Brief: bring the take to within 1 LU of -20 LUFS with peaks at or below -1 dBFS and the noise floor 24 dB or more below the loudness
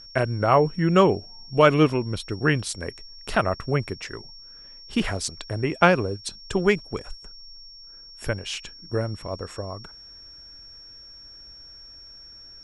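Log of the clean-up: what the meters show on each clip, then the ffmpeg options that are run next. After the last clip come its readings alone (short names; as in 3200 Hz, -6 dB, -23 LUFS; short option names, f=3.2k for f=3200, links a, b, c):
steady tone 5500 Hz; tone level -43 dBFS; loudness -24.0 LUFS; peak -3.0 dBFS; loudness target -20.0 LUFS
-> -af "bandreject=f=5.5k:w=30"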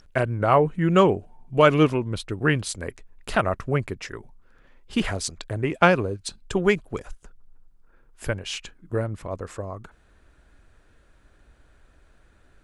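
steady tone none; loudness -24.0 LUFS; peak -2.5 dBFS; loudness target -20.0 LUFS
-> -af "volume=4dB,alimiter=limit=-1dB:level=0:latency=1"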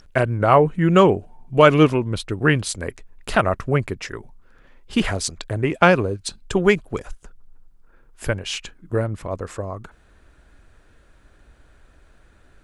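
loudness -20.0 LUFS; peak -1.0 dBFS; noise floor -54 dBFS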